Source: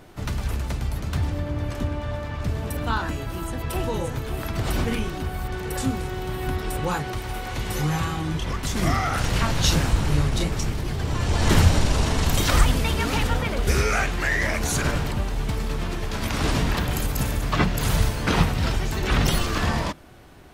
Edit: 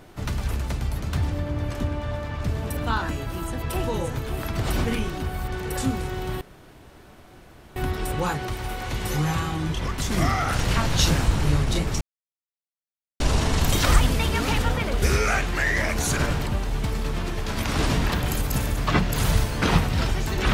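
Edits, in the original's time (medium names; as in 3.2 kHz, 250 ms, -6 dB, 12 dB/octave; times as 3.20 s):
6.41 s: insert room tone 1.35 s
10.66–11.85 s: mute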